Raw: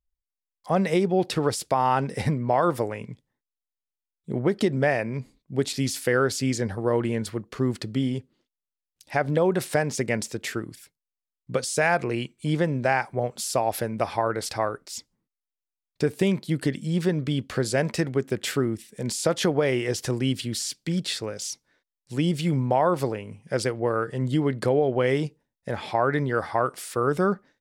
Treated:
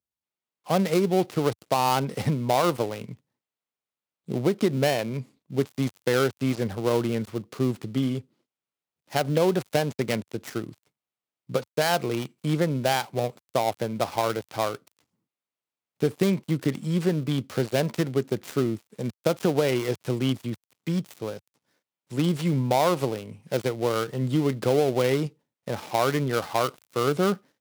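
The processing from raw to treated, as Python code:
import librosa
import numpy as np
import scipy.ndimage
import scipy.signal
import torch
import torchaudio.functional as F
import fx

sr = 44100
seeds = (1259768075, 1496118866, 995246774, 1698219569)

y = fx.dead_time(x, sr, dead_ms=0.17)
y = scipy.signal.sosfilt(scipy.signal.butter(4, 94.0, 'highpass', fs=sr, output='sos'), y)
y = fx.peak_eq(y, sr, hz=1700.0, db=-4.0, octaves=0.43)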